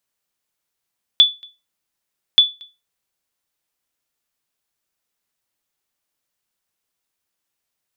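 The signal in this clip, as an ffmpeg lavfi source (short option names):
-f lavfi -i "aevalsrc='0.75*(sin(2*PI*3460*mod(t,1.18))*exp(-6.91*mod(t,1.18)/0.25)+0.0355*sin(2*PI*3460*max(mod(t,1.18)-0.23,0))*exp(-6.91*max(mod(t,1.18)-0.23,0)/0.25))':d=2.36:s=44100"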